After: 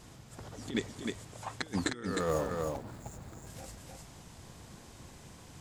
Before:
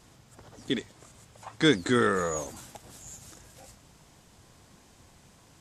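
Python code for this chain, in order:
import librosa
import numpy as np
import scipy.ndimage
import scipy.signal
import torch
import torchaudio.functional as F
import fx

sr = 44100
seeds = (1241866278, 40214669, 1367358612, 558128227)

p1 = fx.median_filter(x, sr, points=15, at=(2.05, 3.47))
p2 = fx.low_shelf(p1, sr, hz=370.0, db=3.0)
p3 = fx.over_compress(p2, sr, threshold_db=-30.0, ratio=-0.5)
p4 = p3 + fx.echo_single(p3, sr, ms=308, db=-4.0, dry=0)
y = p4 * librosa.db_to_amplitude(-3.5)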